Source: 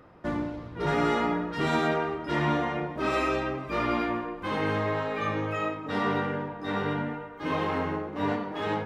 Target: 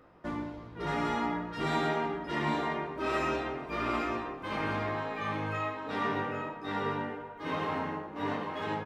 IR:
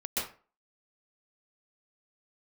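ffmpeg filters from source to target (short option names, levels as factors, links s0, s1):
-filter_complex "[0:a]equalizer=f=110:w=0.71:g=-3.5,asplit=2[s0][s1];[s1]adelay=18,volume=0.422[s2];[s0][s2]amix=inputs=2:normalize=0,aecho=1:1:799:0.473,volume=0.562"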